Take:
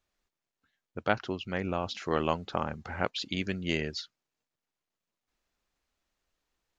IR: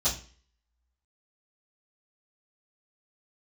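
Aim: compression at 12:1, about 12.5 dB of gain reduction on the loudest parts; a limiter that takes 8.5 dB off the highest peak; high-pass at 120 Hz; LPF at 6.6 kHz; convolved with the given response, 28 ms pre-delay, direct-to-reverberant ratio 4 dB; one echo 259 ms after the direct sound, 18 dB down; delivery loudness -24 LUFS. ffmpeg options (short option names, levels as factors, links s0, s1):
-filter_complex "[0:a]highpass=120,lowpass=6600,acompressor=threshold=0.02:ratio=12,alimiter=level_in=1.33:limit=0.0631:level=0:latency=1,volume=0.75,aecho=1:1:259:0.126,asplit=2[s0][s1];[1:a]atrim=start_sample=2205,adelay=28[s2];[s1][s2]afir=irnorm=-1:irlink=0,volume=0.237[s3];[s0][s3]amix=inputs=2:normalize=0,volume=5.96"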